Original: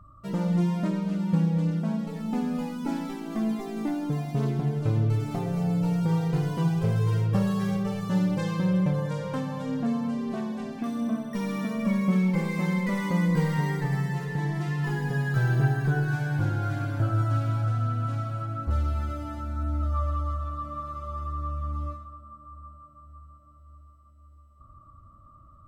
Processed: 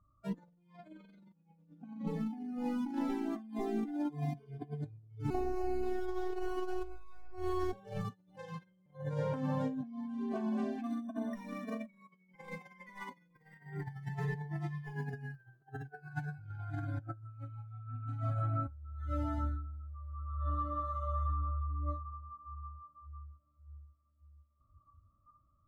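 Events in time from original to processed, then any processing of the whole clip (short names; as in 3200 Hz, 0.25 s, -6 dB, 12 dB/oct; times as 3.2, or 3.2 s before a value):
5.3–7.73 robotiser 366 Hz
whole clip: high shelf 2000 Hz -10 dB; negative-ratio compressor -32 dBFS, ratio -0.5; spectral noise reduction 19 dB; gain -4.5 dB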